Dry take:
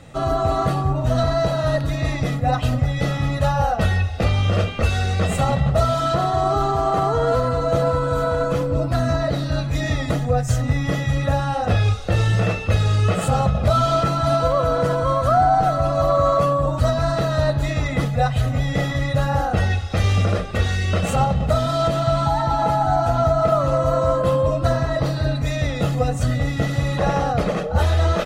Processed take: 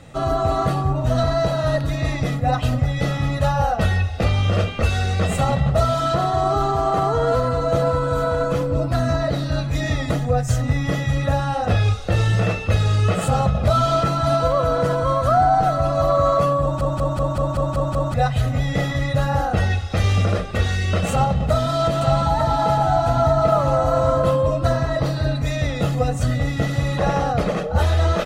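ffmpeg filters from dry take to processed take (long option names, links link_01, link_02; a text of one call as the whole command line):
ffmpeg -i in.wav -filter_complex "[0:a]asettb=1/sr,asplit=3[link_01][link_02][link_03];[link_01]atrim=end=21.114[link_04];[link_02]atrim=start=21.11:end=24.31,asetpts=PTS-STARTPTS,afade=type=in:duration=0.004:curve=qsin,afade=type=out:start_time=3.196:duration=0.004:curve=qsin,aecho=1:1:900:0.422,atrim=end_sample=141120[link_05];[link_03]atrim=start=24.306[link_06];[link_04][link_05]acrossfade=duration=0.004:curve1=hsin:curve2=qsin[link_07];[link_07][link_06]acrossfade=duration=0.004:curve1=qsin:curve2=hsin,asplit=9[link_08][link_09][link_10][link_11][link_12][link_13][link_14][link_15][link_16];[link_08]atrim=end=16.812[link_17];[link_09]atrim=start=16.618:end=16.812[link_18];[link_10]atrim=start=16.618:end=16.812[link_19];[link_11]atrim=start=16.618:end=16.812[link_20];[link_12]atrim=start=16.618:end=16.812[link_21];[link_13]atrim=start=16.618:end=16.812[link_22];[link_14]atrim=start=16.618:end=16.812[link_23];[link_15]atrim=start=16.618:end=16.812[link_24];[link_16]atrim=start=18.138[link_25];[link_17][link_18]acrossfade=duration=0.004:curve1=hsin:curve2=hsin[link_26];[link_26][link_19]acrossfade=duration=0.004:curve1=hsin:curve2=hsin[link_27];[link_27][link_20]acrossfade=duration=0.004:curve1=hsin:curve2=hsin[link_28];[link_28][link_21]acrossfade=duration=0.004:curve1=hsin:curve2=hsin[link_29];[link_29][link_22]acrossfade=duration=0.004:curve1=hsin:curve2=hsin[link_30];[link_30][link_23]acrossfade=duration=0.004:curve1=hsin:curve2=hsin[link_31];[link_31][link_24]acrossfade=duration=0.004:curve1=hsin:curve2=hsin[link_32];[link_32][link_25]acrossfade=duration=0.004:curve1=hsin:curve2=hsin" out.wav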